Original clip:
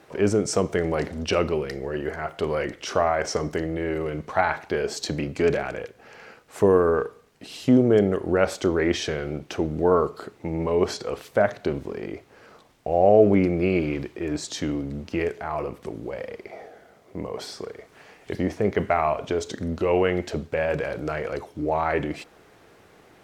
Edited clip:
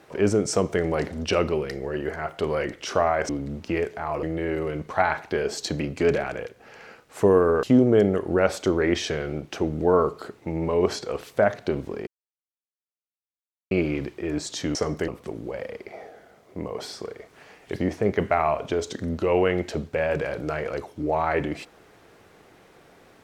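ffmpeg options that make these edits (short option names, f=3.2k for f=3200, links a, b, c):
-filter_complex "[0:a]asplit=8[a][b][c][d][e][f][g][h];[a]atrim=end=3.292[i];[b]atrim=start=14.728:end=15.672[j];[c]atrim=start=3.618:end=7.022[k];[d]atrim=start=7.608:end=12.05,asetpts=PTS-STARTPTS,afade=t=out:st=4.438:d=0.004:c=hsin[l];[e]atrim=start=12.05:end=13.69,asetpts=PTS-STARTPTS,volume=0[m];[f]atrim=start=13.69:end=14.732,asetpts=PTS-STARTPTS,afade=t=in:d=0.004:c=hsin[n];[g]atrim=start=3.288:end=3.622[o];[h]atrim=start=15.668[p];[i][j]acrossfade=d=0.004:c1=hsin:c2=hsin[q];[q][k]acrossfade=d=0.004:c1=hsin:c2=hsin[r];[l][m][n]concat=n=3:v=0:a=1[s];[r][s]acrossfade=d=0.004:c1=hsin:c2=hsin[t];[t][o]acrossfade=d=0.004:c1=hsin:c2=hsin[u];[u][p]acrossfade=d=0.004:c1=hsin:c2=hsin"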